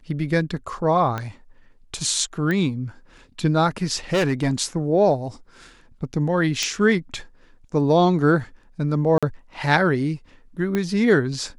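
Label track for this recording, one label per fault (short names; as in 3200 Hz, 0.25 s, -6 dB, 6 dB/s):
1.180000	1.180000	pop -14 dBFS
2.510000	2.510000	pop -14 dBFS
4.130000	4.540000	clipped -16 dBFS
6.630000	6.630000	pop -9 dBFS
9.180000	9.230000	gap 46 ms
10.750000	10.750000	pop -11 dBFS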